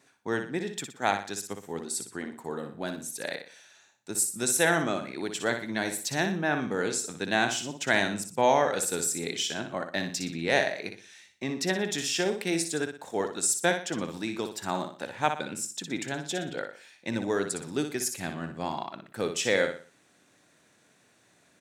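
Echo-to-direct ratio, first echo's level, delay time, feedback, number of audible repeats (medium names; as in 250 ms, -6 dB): -7.0 dB, -7.5 dB, 60 ms, 35%, 4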